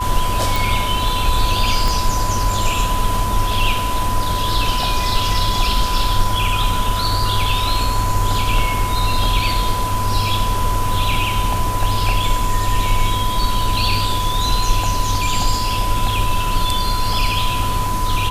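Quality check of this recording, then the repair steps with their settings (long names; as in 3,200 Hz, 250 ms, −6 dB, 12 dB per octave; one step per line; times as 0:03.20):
whistle 1,000 Hz −21 dBFS
0:00.56: click
0:01.88: click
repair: click removal
notch filter 1,000 Hz, Q 30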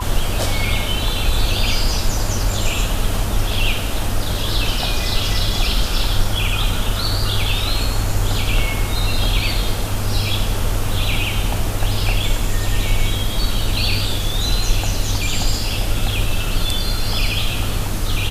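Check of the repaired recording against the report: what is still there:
0:01.88: click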